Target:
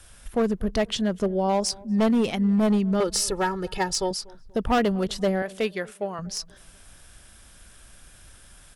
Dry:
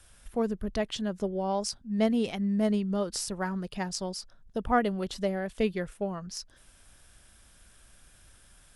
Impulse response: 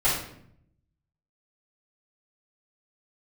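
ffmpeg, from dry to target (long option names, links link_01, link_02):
-filter_complex "[0:a]asettb=1/sr,asplit=3[link_01][link_02][link_03];[link_01]atrim=end=3.004[link_04];[link_02]atrim=start=3:end=4.11,asetpts=PTS-STARTPTS,afade=type=in:duration=0.004:curve=qsin,afade=type=out:start_time=1.106:duration=0.004:curve=qsin,aecho=1:1:2.3:0.85,atrim=end_sample=48951[link_05];[link_03]atrim=start=4.106[link_06];[link_04][link_05]acrossfade=duration=0.004:curve1=hsin:curve2=qsin[link_07];[link_07][link_06]acrossfade=duration=0.004:curve1=qsin:curve2=hsin,asettb=1/sr,asplit=3[link_08][link_09][link_10];[link_08]atrim=end=5.424[link_11];[link_09]atrim=start=5.42:end=6.19,asetpts=PTS-STARTPTS,afade=type=in:duration=0.004:curve=qsin,afade=type=out:start_time=0.766:duration=0.004:curve=qsin,highpass=frequency=600:poles=1[link_12];[link_10]atrim=start=6.186[link_13];[link_11][link_12]acrossfade=duration=0.004:curve1=hsin:curve2=qsin[link_14];[link_14][link_13]acrossfade=duration=0.004:curve1=qsin:curve2=hsin,asoftclip=type=hard:threshold=-24dB,asplit=2[link_15][link_16];[link_16]adelay=241,lowpass=frequency=1100:poles=1,volume=-22.5dB,asplit=2[link_17][link_18];[link_18]adelay=241,lowpass=frequency=1100:poles=1,volume=0.44,asplit=2[link_19][link_20];[link_20]adelay=241,lowpass=frequency=1100:poles=1,volume=0.44[link_21];[link_17][link_19][link_21]amix=inputs=3:normalize=0[link_22];[link_15][link_22]amix=inputs=2:normalize=0,volume=7dB"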